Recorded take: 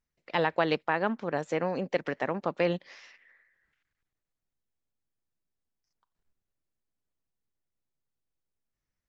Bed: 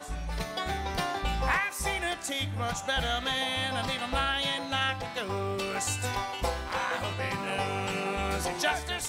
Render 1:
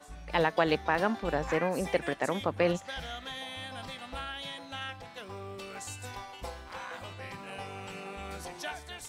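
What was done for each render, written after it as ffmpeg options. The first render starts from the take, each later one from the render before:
ffmpeg -i in.wav -i bed.wav -filter_complex "[1:a]volume=-10.5dB[link_01];[0:a][link_01]amix=inputs=2:normalize=0" out.wav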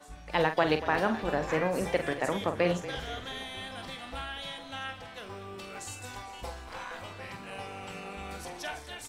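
ffmpeg -i in.wav -filter_complex "[0:a]asplit=2[link_01][link_02];[link_02]adelay=45,volume=-9dB[link_03];[link_01][link_03]amix=inputs=2:normalize=0,asplit=7[link_04][link_05][link_06][link_07][link_08][link_09][link_10];[link_05]adelay=236,afreqshift=-35,volume=-14.5dB[link_11];[link_06]adelay=472,afreqshift=-70,volume=-18.8dB[link_12];[link_07]adelay=708,afreqshift=-105,volume=-23.1dB[link_13];[link_08]adelay=944,afreqshift=-140,volume=-27.4dB[link_14];[link_09]adelay=1180,afreqshift=-175,volume=-31.7dB[link_15];[link_10]adelay=1416,afreqshift=-210,volume=-36dB[link_16];[link_04][link_11][link_12][link_13][link_14][link_15][link_16]amix=inputs=7:normalize=0" out.wav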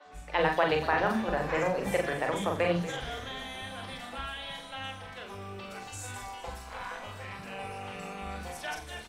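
ffmpeg -i in.wav -filter_complex "[0:a]asplit=2[link_01][link_02];[link_02]adelay=41,volume=-5dB[link_03];[link_01][link_03]amix=inputs=2:normalize=0,acrossover=split=310|4600[link_04][link_05][link_06];[link_04]adelay=50[link_07];[link_06]adelay=120[link_08];[link_07][link_05][link_08]amix=inputs=3:normalize=0" out.wav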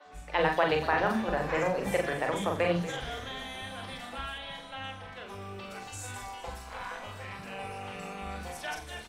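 ffmpeg -i in.wav -filter_complex "[0:a]asettb=1/sr,asplit=3[link_01][link_02][link_03];[link_01]atrim=end=4.384[link_04];[link_02]atrim=start=4.38:end=5.29,asetpts=PTS-STARTPTS,afade=type=in:duration=0.004:curve=qsin,afade=type=out:start_time=0.906:duration=0.004:curve=qsin,highshelf=frequency=5200:gain=-7.5[link_05];[link_03]atrim=start=5.286[link_06];[link_04][link_05]acrossfade=duration=0.004:curve1=hsin:curve2=qsin[link_07];[link_07][link_06]acrossfade=duration=0.004:curve1=qsin:curve2=hsin" out.wav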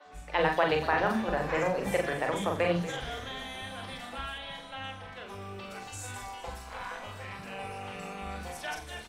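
ffmpeg -i in.wav -af anull out.wav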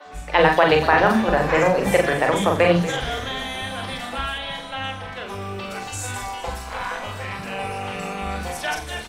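ffmpeg -i in.wav -af "volume=11dB,alimiter=limit=-3dB:level=0:latency=1" out.wav

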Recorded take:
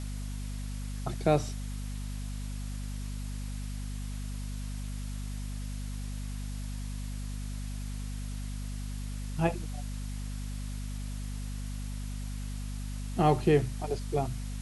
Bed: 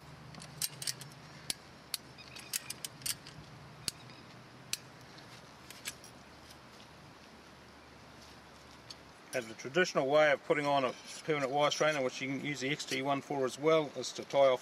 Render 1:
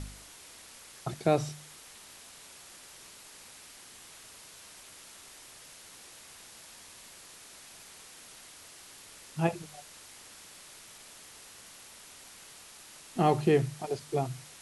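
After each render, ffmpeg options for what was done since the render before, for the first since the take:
ffmpeg -i in.wav -af "bandreject=frequency=50:width_type=h:width=4,bandreject=frequency=100:width_type=h:width=4,bandreject=frequency=150:width_type=h:width=4,bandreject=frequency=200:width_type=h:width=4,bandreject=frequency=250:width_type=h:width=4" out.wav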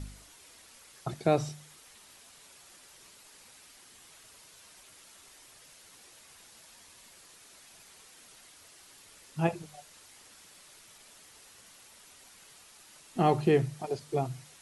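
ffmpeg -i in.wav -af "afftdn=noise_reduction=6:noise_floor=-52" out.wav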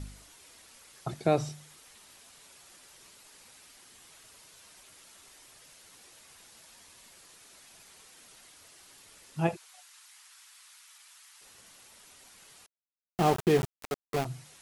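ffmpeg -i in.wav -filter_complex "[0:a]asplit=3[link_01][link_02][link_03];[link_01]afade=type=out:start_time=9.55:duration=0.02[link_04];[link_02]highpass=frequency=980:width=0.5412,highpass=frequency=980:width=1.3066,afade=type=in:start_time=9.55:duration=0.02,afade=type=out:start_time=11.4:duration=0.02[link_05];[link_03]afade=type=in:start_time=11.4:duration=0.02[link_06];[link_04][link_05][link_06]amix=inputs=3:normalize=0,asettb=1/sr,asplit=3[link_07][link_08][link_09];[link_07]atrim=end=12.664[link_10];[link_08]atrim=start=12.66:end=14.25,asetpts=PTS-STARTPTS,afade=type=in:duration=0.004:curve=qsin,afade=type=out:start_time=1.586:duration=0.004:curve=qsin,aeval=exprs='val(0)*gte(abs(val(0)),0.0376)':channel_layout=same[link_11];[link_09]atrim=start=14.246[link_12];[link_10][link_11]acrossfade=duration=0.004:curve1=hsin:curve2=qsin[link_13];[link_13][link_12]acrossfade=duration=0.004:curve1=qsin:curve2=hsin" out.wav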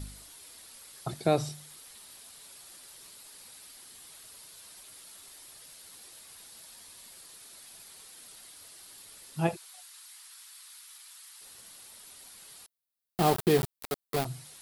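ffmpeg -i in.wav -af "aexciter=amount=1.2:drive=7.6:freq=3600" out.wav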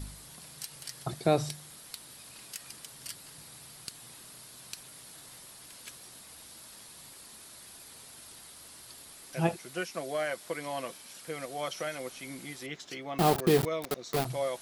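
ffmpeg -i in.wav -i bed.wav -filter_complex "[1:a]volume=-6dB[link_01];[0:a][link_01]amix=inputs=2:normalize=0" out.wav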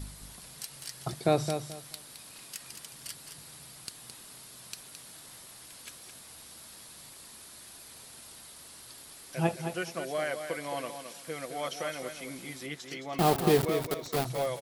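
ffmpeg -i in.wav -af "aecho=1:1:216|432|648:0.398|0.0876|0.0193" out.wav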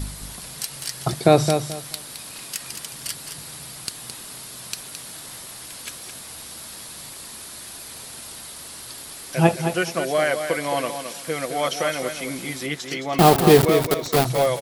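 ffmpeg -i in.wav -af "volume=11.5dB,alimiter=limit=-3dB:level=0:latency=1" out.wav

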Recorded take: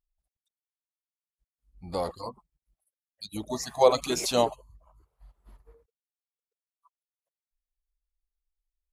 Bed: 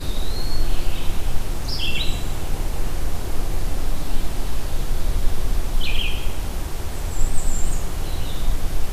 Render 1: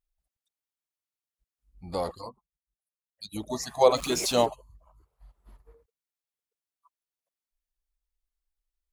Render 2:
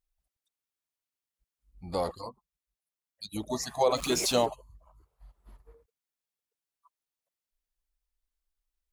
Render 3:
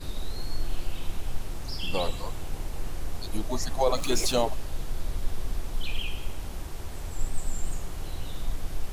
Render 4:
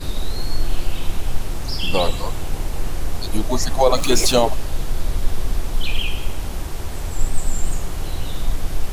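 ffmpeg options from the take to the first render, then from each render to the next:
ffmpeg -i in.wav -filter_complex "[0:a]asettb=1/sr,asplit=3[link_01][link_02][link_03];[link_01]atrim=end=3.964[link_04];[link_02]atrim=start=3.96:end=4.46,asetpts=PTS-STARTPTS,afade=type=in:duration=0.004:curve=qsin,afade=type=out:start_time=0.496:duration=0.004:curve=qsin,aeval=exprs='val(0)+0.5*0.0133*sgn(val(0))':channel_layout=same[link_05];[link_03]atrim=start=4.456[link_06];[link_04][link_05]acrossfade=duration=0.004:curve1=hsin:curve2=qsin[link_07];[link_07][link_06]acrossfade=duration=0.004:curve1=qsin:curve2=hsin,asplit=3[link_08][link_09][link_10];[link_08]atrim=end=2.41,asetpts=PTS-STARTPTS,afade=type=out:start_time=2.17:duration=0.24:silence=0.141254[link_11];[link_09]atrim=start=2.41:end=3.03,asetpts=PTS-STARTPTS,volume=-17dB[link_12];[link_10]atrim=start=3.03,asetpts=PTS-STARTPTS,afade=type=in:duration=0.24:silence=0.141254[link_13];[link_11][link_12][link_13]concat=n=3:v=0:a=1" out.wav
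ffmpeg -i in.wav -af "alimiter=limit=-14dB:level=0:latency=1:release=83" out.wav
ffmpeg -i in.wav -i bed.wav -filter_complex "[1:a]volume=-9.5dB[link_01];[0:a][link_01]amix=inputs=2:normalize=0" out.wav
ffmpeg -i in.wav -af "volume=9.5dB,alimiter=limit=-3dB:level=0:latency=1" out.wav

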